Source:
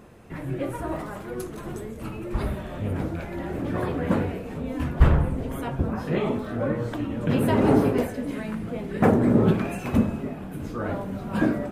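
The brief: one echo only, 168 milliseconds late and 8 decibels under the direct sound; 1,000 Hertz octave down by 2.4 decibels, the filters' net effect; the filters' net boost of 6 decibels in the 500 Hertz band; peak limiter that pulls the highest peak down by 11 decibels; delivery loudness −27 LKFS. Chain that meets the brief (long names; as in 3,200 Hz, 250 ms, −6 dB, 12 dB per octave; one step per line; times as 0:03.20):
parametric band 500 Hz +9 dB
parametric band 1,000 Hz −7.5 dB
brickwall limiter −14 dBFS
single-tap delay 168 ms −8 dB
level −1 dB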